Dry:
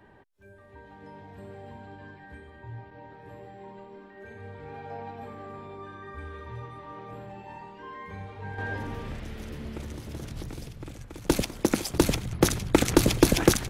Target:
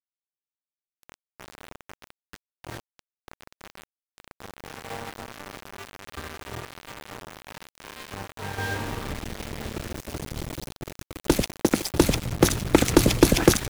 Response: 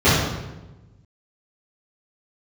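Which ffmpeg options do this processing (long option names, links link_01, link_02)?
-filter_complex "[0:a]asplit=2[link_01][link_02];[link_02]acompressor=threshold=-41dB:ratio=4,volume=-1dB[link_03];[link_01][link_03]amix=inputs=2:normalize=0,aeval=exprs='val(0)*gte(abs(val(0)),0.0266)':channel_layout=same,volume=2dB"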